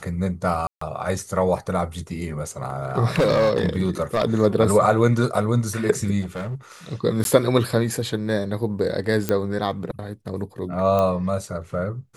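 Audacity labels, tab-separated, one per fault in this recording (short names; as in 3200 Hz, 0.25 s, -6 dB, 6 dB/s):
0.670000	0.810000	gap 0.144 s
3.160000	4.250000	clipped -14 dBFS
6.210000	6.550000	clipped -25.5 dBFS
7.240000	7.250000	gap 12 ms
9.290000	9.290000	pop -7 dBFS
10.990000	10.990000	pop -11 dBFS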